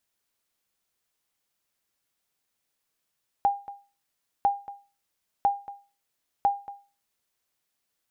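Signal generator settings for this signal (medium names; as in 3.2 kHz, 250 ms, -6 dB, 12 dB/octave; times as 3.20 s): sonar ping 804 Hz, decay 0.33 s, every 1.00 s, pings 4, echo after 0.23 s, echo -17.5 dB -14.5 dBFS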